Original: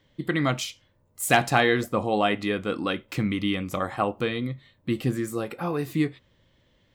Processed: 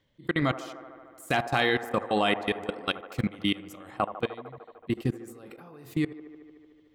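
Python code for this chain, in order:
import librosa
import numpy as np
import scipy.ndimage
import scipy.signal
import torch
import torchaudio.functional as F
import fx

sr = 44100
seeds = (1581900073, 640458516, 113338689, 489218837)

y = fx.high_shelf(x, sr, hz=3000.0, db=8.0, at=(1.54, 3.91))
y = fx.level_steps(y, sr, step_db=24)
y = fx.echo_wet_bandpass(y, sr, ms=75, feedback_pct=80, hz=700.0, wet_db=-11.5)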